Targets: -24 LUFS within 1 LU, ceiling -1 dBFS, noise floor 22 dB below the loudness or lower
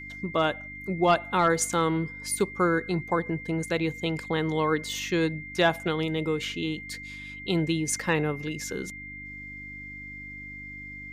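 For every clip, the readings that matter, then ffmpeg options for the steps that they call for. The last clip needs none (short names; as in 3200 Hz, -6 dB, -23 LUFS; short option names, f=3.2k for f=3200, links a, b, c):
hum 50 Hz; harmonics up to 300 Hz; hum level -44 dBFS; steady tone 2100 Hz; tone level -39 dBFS; loudness -27.5 LUFS; peak -12.0 dBFS; loudness target -24.0 LUFS
-> -af "bandreject=f=50:t=h:w=4,bandreject=f=100:t=h:w=4,bandreject=f=150:t=h:w=4,bandreject=f=200:t=h:w=4,bandreject=f=250:t=h:w=4,bandreject=f=300:t=h:w=4"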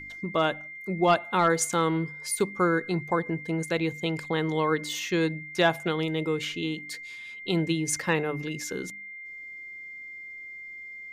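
hum none; steady tone 2100 Hz; tone level -39 dBFS
-> -af "bandreject=f=2.1k:w=30"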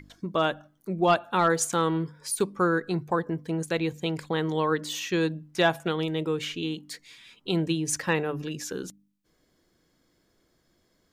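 steady tone none; loudness -27.5 LUFS; peak -12.0 dBFS; loudness target -24.0 LUFS
-> -af "volume=3.5dB"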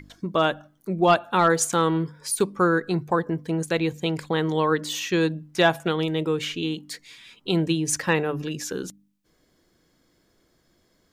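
loudness -24.0 LUFS; peak -8.5 dBFS; noise floor -66 dBFS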